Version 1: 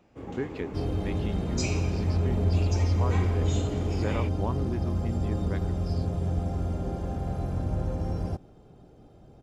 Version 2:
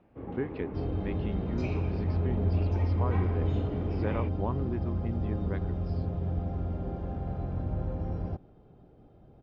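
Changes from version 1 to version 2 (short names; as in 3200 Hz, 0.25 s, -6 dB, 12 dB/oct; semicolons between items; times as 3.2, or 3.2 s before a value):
first sound: add high shelf 3500 Hz -11.5 dB; second sound -3.0 dB; master: add air absorption 290 m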